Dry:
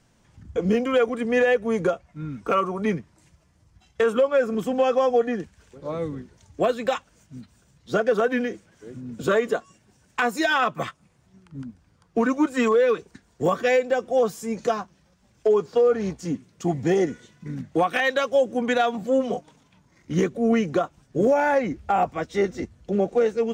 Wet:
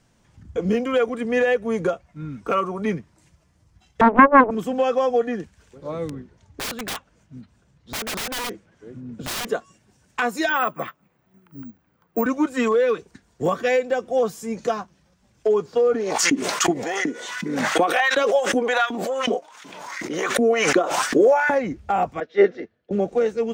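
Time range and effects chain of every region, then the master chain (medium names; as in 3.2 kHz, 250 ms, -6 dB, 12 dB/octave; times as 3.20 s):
4.01–4.51 s: resonant low-pass 560 Hz, resonance Q 2.9 + loudspeaker Doppler distortion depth 0.97 ms
6.09–9.47 s: low-pass 2.6 kHz 6 dB/octave + integer overflow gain 23.5 dB
10.49–12.26 s: careless resampling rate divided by 2×, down filtered, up zero stuff + three-band isolator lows -14 dB, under 160 Hz, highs -15 dB, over 2.9 kHz
15.94–21.51 s: LFO high-pass saw up 2.7 Hz 240–1900 Hz + swell ahead of each attack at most 33 dB/s
22.20–22.91 s: cabinet simulation 270–4100 Hz, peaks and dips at 440 Hz +8 dB, 620 Hz +5 dB, 1 kHz -5 dB, 1.7 kHz +8 dB + three bands expanded up and down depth 100%
whole clip: none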